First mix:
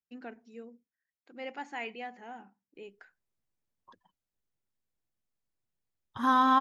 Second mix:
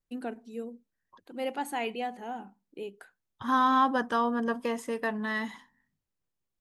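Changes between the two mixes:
first voice: remove Chebyshev low-pass with heavy ripple 7,200 Hz, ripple 9 dB
second voice: entry −2.75 s

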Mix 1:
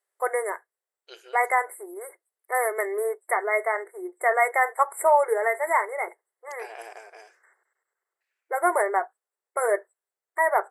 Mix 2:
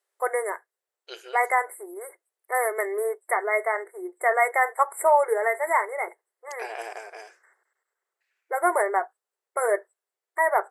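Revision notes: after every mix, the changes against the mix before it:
second voice +5.5 dB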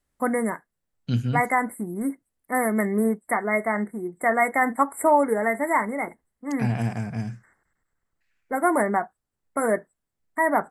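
master: remove linear-phase brick-wall high-pass 350 Hz

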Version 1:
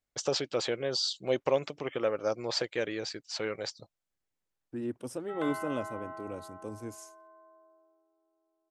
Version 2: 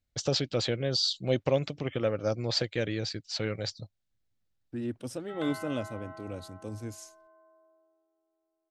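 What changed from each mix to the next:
first voice: add low-shelf EQ 310 Hz +12 dB
second voice +3.0 dB
master: add graphic EQ with 15 bands 100 Hz +5 dB, 400 Hz −5 dB, 1,000 Hz −6 dB, 4,000 Hz +5 dB, 10,000 Hz −4 dB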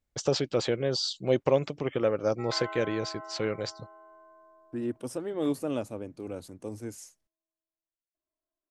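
background: entry −2.90 s
master: add graphic EQ with 15 bands 100 Hz −5 dB, 400 Hz +5 dB, 1,000 Hz +6 dB, 4,000 Hz −5 dB, 10,000 Hz +4 dB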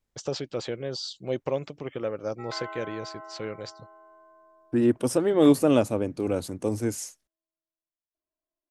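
first voice −4.5 dB
second voice +11.0 dB

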